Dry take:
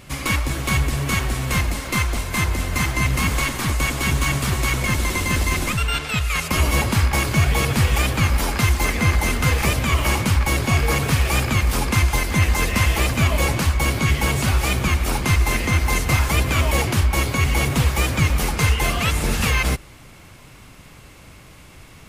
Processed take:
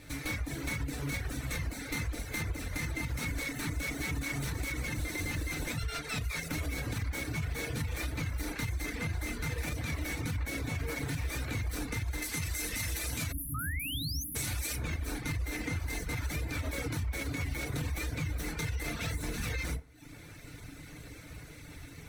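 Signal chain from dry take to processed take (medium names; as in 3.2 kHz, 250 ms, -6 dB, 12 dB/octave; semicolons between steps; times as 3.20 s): comb filter that takes the minimum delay 0.49 ms; 12.22–14.76 s: peaking EQ 11 kHz +14 dB 2.5 oct; FDN reverb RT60 0.45 s, low-frequency decay 0.95×, high-frequency decay 0.5×, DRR -0.5 dB; level rider gain up to 4 dB; peak limiter -8.5 dBFS, peak gain reduction 7 dB; 13.32–14.35 s: spectral selection erased 310–9900 Hz; reverb removal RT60 0.64 s; 13.54–14.24 s: painted sound rise 1.2–6.6 kHz -24 dBFS; compression 2:1, threshold -30 dBFS, peak gain reduction 9.5 dB; trim -8 dB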